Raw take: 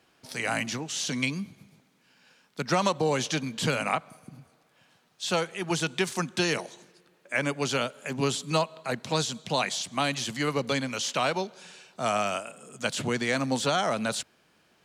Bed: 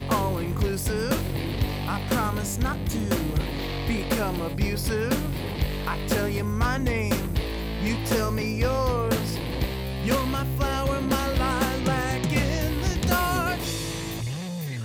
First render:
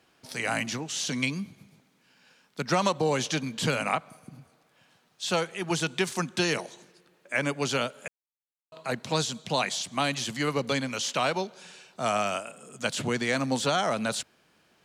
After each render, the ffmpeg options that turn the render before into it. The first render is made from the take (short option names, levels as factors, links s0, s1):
-filter_complex "[0:a]asplit=3[s0][s1][s2];[s0]atrim=end=8.08,asetpts=PTS-STARTPTS,afade=t=out:st=8.076:d=0.004:c=hsin[s3];[s1]atrim=start=8.08:end=8.72,asetpts=PTS-STARTPTS,volume=0[s4];[s2]atrim=start=8.72,asetpts=PTS-STARTPTS,afade=t=in:d=0.004:c=hsin[s5];[s3][s4][s5]concat=n=3:v=0:a=1"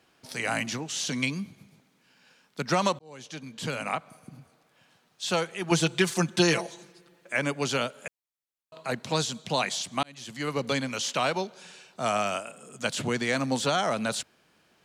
-filter_complex "[0:a]asettb=1/sr,asplit=3[s0][s1][s2];[s0]atrim=end=5.714[s3];[s1]atrim=start=5.71:end=7.33,asetpts=PTS-STARTPTS,afade=t=in:d=0.004:c=qsin,afade=t=out:st=1.616:d=0.004:c=qsin,aecho=1:1:5.9:0.97,atrim=end_sample=71442[s4];[s2]atrim=start=7.326[s5];[s3][s4]acrossfade=d=0.004:c1=hsin:c2=qsin[s6];[s6][s5]acrossfade=d=0.004:c1=qsin:c2=hsin,asplit=3[s7][s8][s9];[s7]atrim=end=2.99,asetpts=PTS-STARTPTS,afade=t=out:st=2.986:d=0.004:c=hsin[s10];[s8]atrim=start=2.99:end=10.03,asetpts=PTS-STARTPTS,afade=t=in:d=1.31,afade=t=out:st=7.036:d=0.004:c=hsin[s11];[s9]atrim=start=10.03,asetpts=PTS-STARTPTS,afade=t=in:d=0.63[s12];[s10][s11][s12]concat=n=3:v=0:a=1"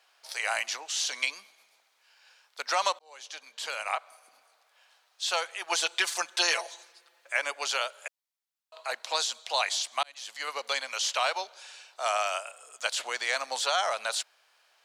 -af "highpass=f=630:w=0.5412,highpass=f=630:w=1.3066,equalizer=f=4500:t=o:w=0.81:g=3"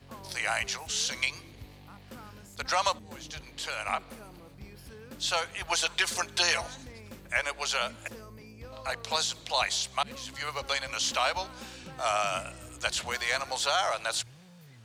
-filter_complex "[1:a]volume=0.0794[s0];[0:a][s0]amix=inputs=2:normalize=0"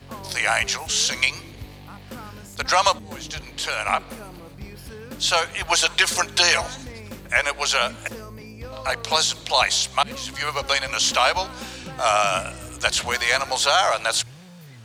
-af "volume=2.82,alimiter=limit=0.708:level=0:latency=1"